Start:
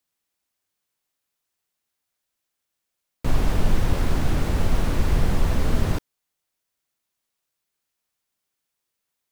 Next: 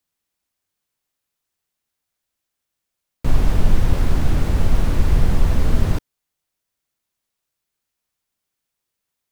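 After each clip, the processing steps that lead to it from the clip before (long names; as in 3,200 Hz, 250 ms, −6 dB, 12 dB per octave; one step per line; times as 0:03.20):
low-shelf EQ 170 Hz +5.5 dB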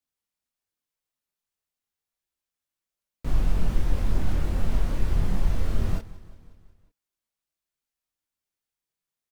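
repeating echo 181 ms, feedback 60%, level −18.5 dB
multi-voice chorus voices 4, 0.29 Hz, delay 24 ms, depth 3.3 ms
level −6 dB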